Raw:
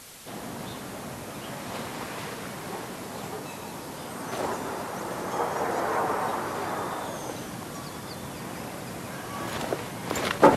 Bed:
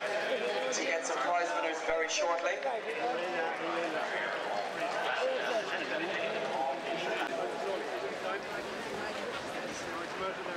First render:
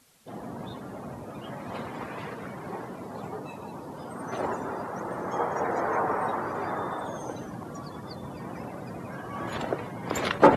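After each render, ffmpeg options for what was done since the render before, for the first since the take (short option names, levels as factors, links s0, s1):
-af "afftdn=nr=16:nf=-39"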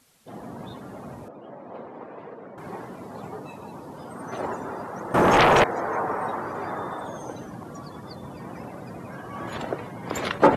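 -filter_complex "[0:a]asettb=1/sr,asplit=3[s0][s1][s2];[s0]atrim=end=1.284[s3];[s1]atrim=start=1.28:end=2.58,asetpts=PTS-STARTPTS,afade=t=in:d=0.004:c=qsin,afade=t=out:st=1.296:d=0.004:c=qsin,bandpass=f=500:t=q:w=1[s4];[s2]atrim=start=2.576[s5];[s3][s4]acrossfade=d=0.004:c1=hsin:c2=qsin[s6];[s6][s5]acrossfade=d=0.004:c1=qsin:c2=hsin,asettb=1/sr,asplit=3[s7][s8][s9];[s7]atrim=end=5.144[s10];[s8]atrim=start=5.14:end=5.64,asetpts=PTS-STARTPTS,afade=t=in:d=0.004:c=qsin,afade=t=out:st=0.496:d=0.004:c=qsin,aeval=exprs='0.237*sin(PI/2*5.01*val(0)/0.237)':c=same[s11];[s9]atrim=start=5.636[s12];[s10][s11]acrossfade=d=0.004:c1=hsin:c2=qsin[s13];[s13][s12]acrossfade=d=0.004:c1=qsin:c2=hsin"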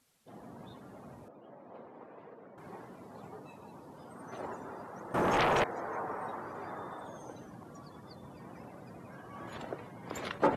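-af "volume=0.282"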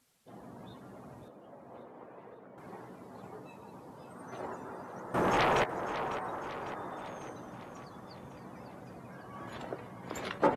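-filter_complex "[0:a]asplit=2[s0][s1];[s1]adelay=16,volume=0.237[s2];[s0][s2]amix=inputs=2:normalize=0,aecho=1:1:551|1102|1653|2204|2755|3306:0.251|0.146|0.0845|0.049|0.0284|0.0165"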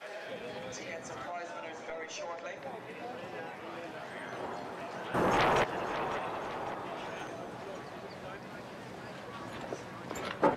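-filter_complex "[1:a]volume=0.316[s0];[0:a][s0]amix=inputs=2:normalize=0"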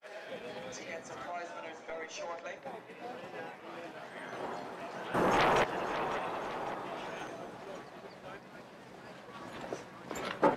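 -af "agate=range=0.0224:threshold=0.0112:ratio=3:detection=peak,equalizer=f=96:w=2.9:g=-10"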